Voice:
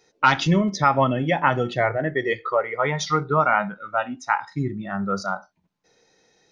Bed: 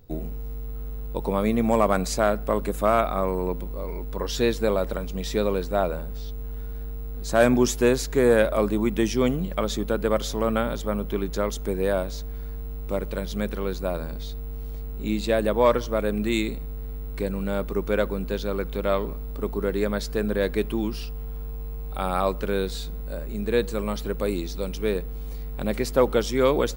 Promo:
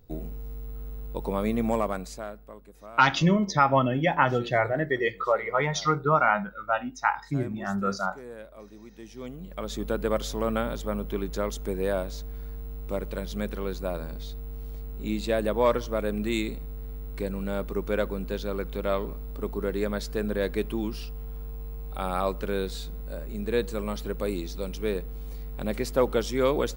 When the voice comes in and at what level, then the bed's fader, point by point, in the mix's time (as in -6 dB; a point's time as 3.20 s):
2.75 s, -2.5 dB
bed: 1.69 s -4 dB
2.64 s -24 dB
8.94 s -24 dB
9.86 s -3.5 dB